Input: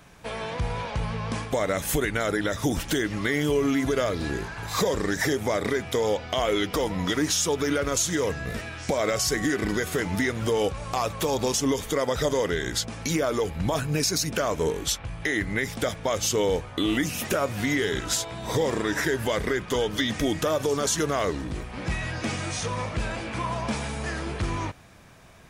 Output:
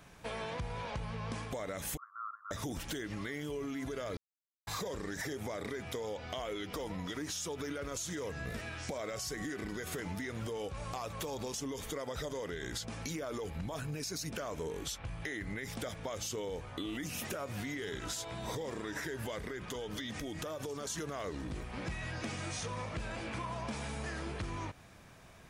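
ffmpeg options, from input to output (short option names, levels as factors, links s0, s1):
-filter_complex "[0:a]asettb=1/sr,asplit=3[s0][s1][s2];[s0]atrim=end=1.974[s3];[s1]atrim=start=1.97:end=2.51,asetpts=PTS-STARTPTS,afade=t=in:d=0.004:c=qsin,afade=t=out:st=0.536:d=0.004:c=qsin,asuperpass=centerf=1200:order=8:qfactor=4[s4];[s2]atrim=start=2.506[s5];[s3][s4]acrossfade=d=0.004:c1=hsin:c2=qsin[s6];[s6][s5]acrossfade=d=0.004:c1=qsin:c2=hsin,asettb=1/sr,asplit=3[s7][s8][s9];[s7]atrim=end=19.404[s10];[s8]atrim=start=19.4:end=20.9,asetpts=PTS-STARTPTS,afade=t=in:d=0.004:c=qsin,afade=t=out:st=1.496:d=0.004:c=qsin,acompressor=threshold=0.0316:ratio=6:attack=3.2:release=140:knee=1:detection=peak[s11];[s9]atrim=start=20.896[s12];[s10][s11]acrossfade=d=0.004:c1=hsin:c2=qsin[s13];[s13][s12]acrossfade=d=0.004:c1=qsin:c2=hsin,asplit=3[s14][s15][s16];[s14]atrim=end=4.17,asetpts=PTS-STARTPTS,afade=t=out:st=4.166:d=0.004:c=hsin[s17];[s15]atrim=start=4.17:end=4.67,asetpts=PTS-STARTPTS,volume=0[s18];[s16]atrim=start=4.67,asetpts=PTS-STARTPTS,afade=t=in:d=0.004:c=hsin[s19];[s17][s18][s19]concat=n=3:v=0:a=1,alimiter=limit=0.1:level=0:latency=1:release=51,acompressor=threshold=0.0282:ratio=6,volume=0.562"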